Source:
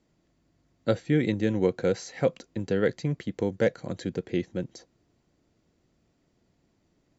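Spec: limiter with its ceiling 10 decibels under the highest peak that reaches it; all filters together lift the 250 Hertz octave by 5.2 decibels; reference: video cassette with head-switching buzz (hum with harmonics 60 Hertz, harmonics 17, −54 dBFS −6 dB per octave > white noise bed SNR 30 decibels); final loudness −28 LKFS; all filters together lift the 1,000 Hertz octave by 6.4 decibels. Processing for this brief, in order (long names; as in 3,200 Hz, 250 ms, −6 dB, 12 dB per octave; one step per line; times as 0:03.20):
parametric band 250 Hz +6.5 dB
parametric band 1,000 Hz +9 dB
brickwall limiter −16 dBFS
hum with harmonics 60 Hz, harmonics 17, −54 dBFS −6 dB per octave
white noise bed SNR 30 dB
level +1 dB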